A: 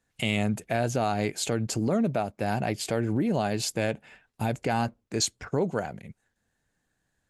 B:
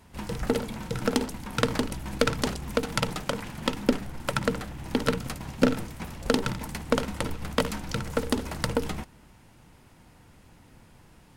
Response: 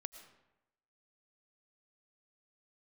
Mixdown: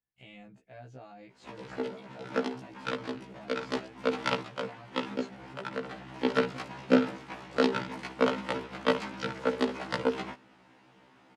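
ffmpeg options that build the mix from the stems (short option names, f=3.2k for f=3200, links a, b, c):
-filter_complex "[0:a]volume=-19.5dB,asplit=2[a][b];[1:a]highpass=260,adelay=1300,volume=2.5dB[c];[b]apad=whole_len=558455[d];[c][d]sidechaincompress=threshold=-50dB:ratio=12:attack=20:release=280[e];[a][e]amix=inputs=2:normalize=0,lowpass=3.7k,afftfilt=real='re*1.73*eq(mod(b,3),0)':imag='im*1.73*eq(mod(b,3),0)':win_size=2048:overlap=0.75"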